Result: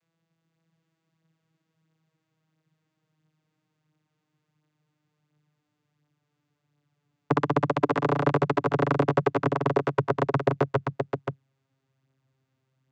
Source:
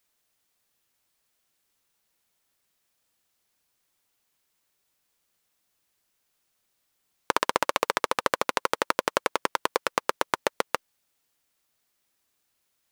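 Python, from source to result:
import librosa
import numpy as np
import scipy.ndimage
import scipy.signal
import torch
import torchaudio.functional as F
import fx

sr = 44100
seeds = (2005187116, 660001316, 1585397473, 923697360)

y = fx.vocoder_glide(x, sr, note=52, semitones=-4)
y = fx.bass_treble(y, sr, bass_db=12, treble_db=-6)
y = y + 10.0 ** (-5.0 / 20.0) * np.pad(y, (int(525 * sr / 1000.0), 0))[:len(y)]
y = y * 10.0 ** (1.0 / 20.0)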